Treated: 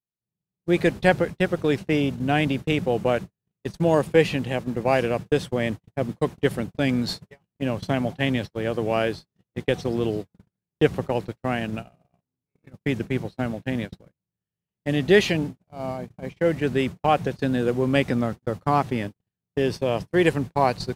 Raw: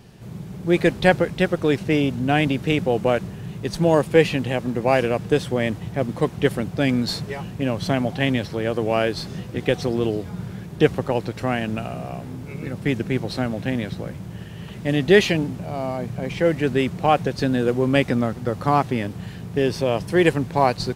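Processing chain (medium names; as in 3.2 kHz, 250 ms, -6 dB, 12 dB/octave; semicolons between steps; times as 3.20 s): gate -25 dBFS, range -52 dB; trim -2.5 dB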